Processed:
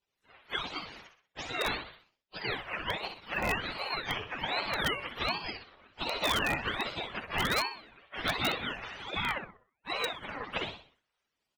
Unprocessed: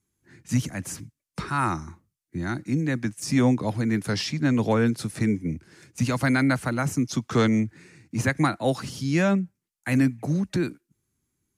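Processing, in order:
frequency axis turned over on the octave scale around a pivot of 540 Hz
gate on every frequency bin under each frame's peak −10 dB weak
pitch vibrato 2.5 Hz 6.6 cents
0:09.38–0:09.90: tuned comb filter 150 Hz, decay 1.2 s, mix 60%
repeating echo 63 ms, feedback 39%, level −7 dB
in parallel at −4.5 dB: wrap-around overflow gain 22.5 dB
on the sum: low-shelf EQ 220 Hz −11 dB
ring modulator whose carrier an LFO sweeps 1,000 Hz, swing 75%, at 1.3 Hz
level +2 dB

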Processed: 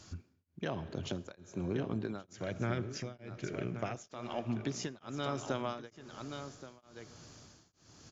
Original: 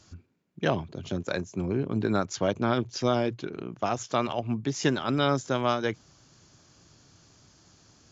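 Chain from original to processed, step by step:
0:02.33–0:03.95: octave-band graphic EQ 125/250/1,000/2,000/4,000 Hz +5/−5/−10/+9/−9 dB
downward compressor 4 to 1, threshold −35 dBFS, peak gain reduction 14 dB
on a send: single-tap delay 1,126 ms −9.5 dB
on the sum: comb and all-pass reverb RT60 3.1 s, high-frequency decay 0.65×, pre-delay 15 ms, DRR 15 dB
tremolo along a rectified sine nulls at 1.1 Hz
level +2.5 dB

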